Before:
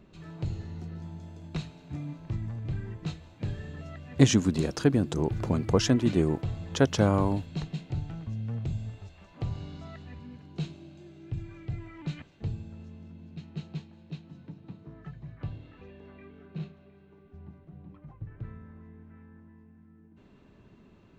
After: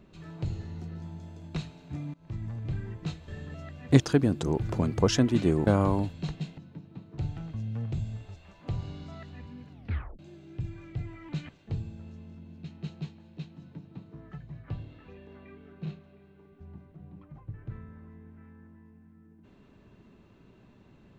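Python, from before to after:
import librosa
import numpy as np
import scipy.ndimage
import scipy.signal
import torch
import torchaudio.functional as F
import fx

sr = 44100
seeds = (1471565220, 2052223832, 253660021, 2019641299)

y = fx.edit(x, sr, fx.fade_in_from(start_s=2.14, length_s=0.49, curve='qsin', floor_db=-21.0),
    fx.cut(start_s=3.28, length_s=0.27),
    fx.cut(start_s=4.27, length_s=0.44),
    fx.cut(start_s=6.38, length_s=0.62),
    fx.tape_stop(start_s=10.44, length_s=0.48),
    fx.duplicate(start_s=14.31, length_s=0.6, to_s=7.91), tone=tone)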